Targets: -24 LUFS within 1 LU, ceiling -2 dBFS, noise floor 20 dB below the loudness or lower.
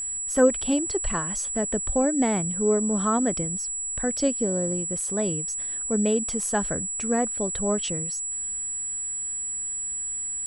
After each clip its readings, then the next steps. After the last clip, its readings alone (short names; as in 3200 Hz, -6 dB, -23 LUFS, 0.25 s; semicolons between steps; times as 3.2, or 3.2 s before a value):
steady tone 7800 Hz; tone level -28 dBFS; loudness -25.0 LUFS; peak -7.0 dBFS; loudness target -24.0 LUFS
-> notch 7800 Hz, Q 30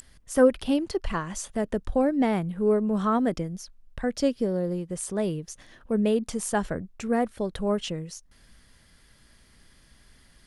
steady tone none; loudness -27.0 LUFS; peak -7.5 dBFS; loudness target -24.0 LUFS
-> gain +3 dB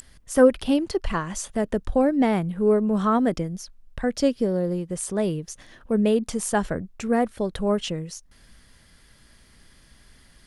loudness -24.0 LUFS; peak -4.5 dBFS; noise floor -55 dBFS